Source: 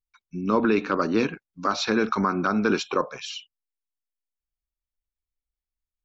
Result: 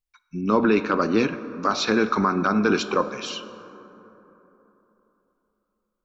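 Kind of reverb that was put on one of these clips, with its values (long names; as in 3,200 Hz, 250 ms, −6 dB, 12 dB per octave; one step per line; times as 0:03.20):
dense smooth reverb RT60 3.6 s, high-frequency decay 0.35×, DRR 12 dB
level +2 dB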